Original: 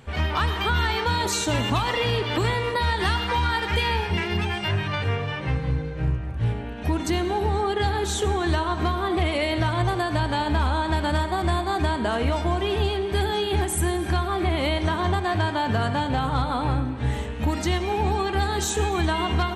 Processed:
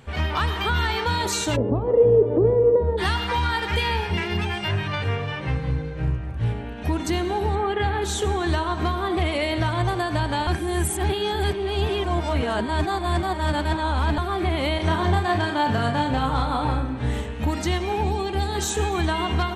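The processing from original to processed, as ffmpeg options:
-filter_complex "[0:a]asplit=3[s0][s1][s2];[s0]afade=t=out:st=1.55:d=0.02[s3];[s1]lowpass=f=470:t=q:w=4.4,afade=t=in:st=1.55:d=0.02,afade=t=out:st=2.97:d=0.02[s4];[s2]afade=t=in:st=2.97:d=0.02[s5];[s3][s4][s5]amix=inputs=3:normalize=0,asettb=1/sr,asplit=3[s6][s7][s8];[s6]atrim=end=7.554[s9];[s7]atrim=start=7.55:end=8.02,asetpts=PTS-STARTPTS,afade=t=in:d=0.004:c=qsin,afade=t=out:st=0.466:d=0.004:c=qsin,highshelf=f=3600:t=q:w=1.5:g=-9.5[s10];[s8]atrim=start=8.016[s11];[s9][s10]acrossfade=d=0.004:c1=hsin:c2=qsin[s12];[s12][s11]acrossfade=d=0.004:c1=qsin:c2=hsin,asettb=1/sr,asplit=3[s13][s14][s15];[s13]atrim=end=14.764[s16];[s14]atrim=start=14.76:end=17.21,asetpts=PTS-STARTPTS,afade=t=in:d=0.004:c=qsin,afade=t=out:st=2.446:d=0.004:c=qsin,asplit=2[s17][s18];[s18]adelay=34,volume=0.596[s19];[s17][s19]amix=inputs=2:normalize=0,atrim=end_sample=108045[s20];[s15]atrim=start=17.206[s21];[s16][s20]acrossfade=d=0.004:c1=hsin:c2=qsin[s22];[s22][s21]acrossfade=d=0.004:c1=qsin:c2=hsin,asettb=1/sr,asplit=3[s23][s24][s25];[s23]atrim=end=18.044[s26];[s24]atrim=start=18.04:end=18.55,asetpts=PTS-STARTPTS,afade=t=in:d=0.004:c=qsin,afade=t=out:st=0.506:d=0.004:c=qsin,equalizer=f=1400:t=o:w=1:g=-8[s27];[s25]atrim=start=18.546[s28];[s26][s27]acrossfade=d=0.004:c1=hsin:c2=qsin[s29];[s29][s28]acrossfade=d=0.004:c1=qsin:c2=hsin,asplit=3[s30][s31][s32];[s30]atrim=end=10.472[s33];[s31]atrim=start=10.468:end=14.182,asetpts=PTS-STARTPTS,areverse[s34];[s32]atrim=start=14.178[s35];[s33][s34]acrossfade=d=0.004:c1=hsin:c2=hsin[s36];[s36][s35]acrossfade=d=0.004:c1=hsin:c2=hsin"

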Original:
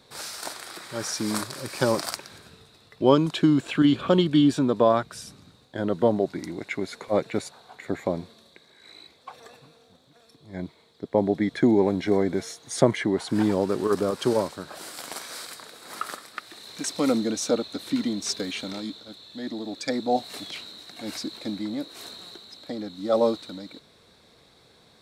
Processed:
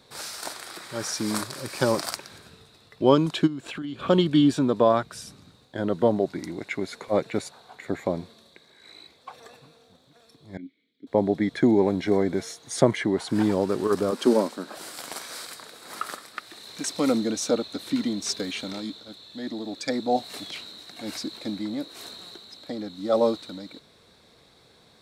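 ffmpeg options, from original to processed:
-filter_complex "[0:a]asplit=3[s0][s1][s2];[s0]afade=t=out:st=3.46:d=0.02[s3];[s1]acompressor=threshold=0.0224:ratio=4:attack=3.2:release=140:knee=1:detection=peak,afade=t=in:st=3.46:d=0.02,afade=t=out:st=4.01:d=0.02[s4];[s2]afade=t=in:st=4.01:d=0.02[s5];[s3][s4][s5]amix=inputs=3:normalize=0,asettb=1/sr,asplit=3[s6][s7][s8];[s6]atrim=end=10.574[s9];[s7]atrim=start=10.57:end=11.07,asetpts=PTS-STARTPTS,afade=t=in:d=0.004:c=qsin,afade=t=out:st=0.496:d=0.004:c=qsin,asplit=3[s10][s11][s12];[s10]bandpass=f=270:t=q:w=8,volume=1[s13];[s11]bandpass=f=2290:t=q:w=8,volume=0.501[s14];[s12]bandpass=f=3010:t=q:w=8,volume=0.355[s15];[s13][s14][s15]amix=inputs=3:normalize=0[s16];[s8]atrim=start=11.066[s17];[s9][s16]acrossfade=d=0.004:c1=hsin:c2=qsin[s18];[s18][s17]acrossfade=d=0.004:c1=qsin:c2=hsin,asettb=1/sr,asplit=3[s19][s20][s21];[s19]atrim=end=14.124[s22];[s20]atrim=start=14.12:end=14.77,asetpts=PTS-STARTPTS,afade=t=in:d=0.004:c=qsin,afade=t=out:st=0.646:d=0.004:c=qsin,lowshelf=f=160:t=q:w=3:g=-12.5[s23];[s21]atrim=start=14.766[s24];[s22][s23]acrossfade=d=0.004:c1=hsin:c2=qsin[s25];[s25][s24]acrossfade=d=0.004:c1=qsin:c2=hsin"

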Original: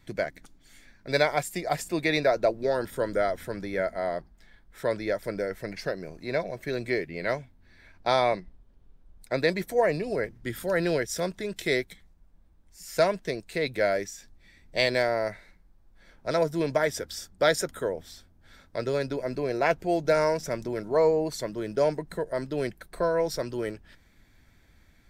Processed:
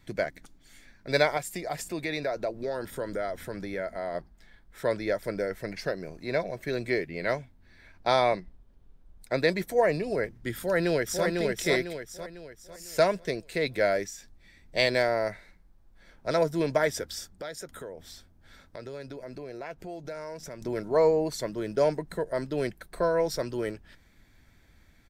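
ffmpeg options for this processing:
-filter_complex "[0:a]asettb=1/sr,asplit=3[s0][s1][s2];[s0]atrim=end=1.374[s3];[s1]atrim=start=1.37:end=4.15,asetpts=PTS-STARTPTS,afade=t=in:d=0.004:c=qsin,afade=t=out:st=2.776:d=0.004:c=qsin,acompressor=threshold=0.0251:ratio=2:attack=3.2:release=140:knee=1:detection=peak[s4];[s2]atrim=start=4.146[s5];[s3][s4]acrossfade=d=0.004:c1=hsin:c2=qsin[s6];[s6][s5]acrossfade=d=0.004:c1=qsin:c2=hsin,asplit=2[s7][s8];[s8]afade=t=in:st=10.56:d=0.01,afade=t=out:st=11.26:d=0.01,aecho=0:1:500|1000|1500|2000|2500:0.707946|0.283178|0.113271|0.0453085|0.0181234[s9];[s7][s9]amix=inputs=2:normalize=0,asettb=1/sr,asplit=3[s10][s11][s12];[s10]atrim=end=17.334[s13];[s11]atrim=start=17.33:end=20.62,asetpts=PTS-STARTPTS,afade=t=in:d=0.004:c=qsin,afade=t=out:st=3.286:d=0.004:c=qsin,acompressor=threshold=0.01:ratio=3:attack=3.2:release=140:knee=1:detection=peak[s14];[s12]atrim=start=20.616[s15];[s13][s14]acrossfade=d=0.004:c1=hsin:c2=qsin[s16];[s16][s15]acrossfade=d=0.004:c1=qsin:c2=hsin"

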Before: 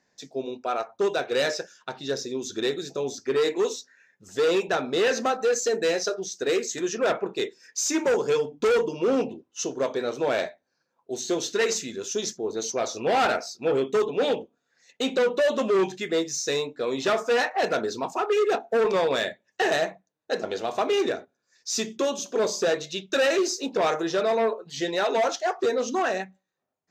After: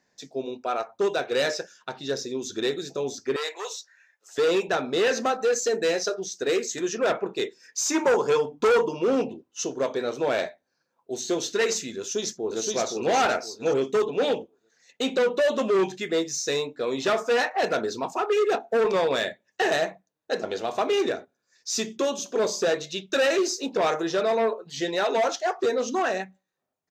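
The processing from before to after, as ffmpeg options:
-filter_complex "[0:a]asettb=1/sr,asplit=3[s0][s1][s2];[s0]atrim=end=3.364[s3];[s1]atrim=start=3.36:end=4.38,asetpts=PTS-STARTPTS,afade=t=in:d=0.004:c=qsin,afade=t=out:st=1.016:d=0.004:c=qsin,highpass=f=630:w=0.5412,highpass=f=630:w=1.3066[s4];[s2]atrim=start=4.376[s5];[s3][s4]acrossfade=d=0.004:c1=hsin:c2=qsin[s6];[s6][s5]acrossfade=d=0.004:c1=qsin:c2=hsin,asettb=1/sr,asplit=3[s7][s8][s9];[s7]atrim=end=7.804[s10];[s8]atrim=start=7.8:end=8.99,asetpts=PTS-STARTPTS,afade=t=in:d=0.004:c=qsin,afade=t=out:st=1.186:d=0.004:c=qsin,equalizer=f=1000:t=o:w=1:g=7.5[s11];[s9]atrim=start=8.986[s12];[s10][s11]acrossfade=d=0.004:c1=hsin:c2=qsin[s13];[s13][s12]acrossfade=d=0.004:c1=qsin:c2=hsin,asplit=2[s14][s15];[s15]afade=t=in:st=11.99:d=0.01,afade=t=out:st=12.69:d=0.01,aecho=0:1:520|1040|1560|2080:0.749894|0.187474|0.0468684|0.0117171[s16];[s14][s16]amix=inputs=2:normalize=0"

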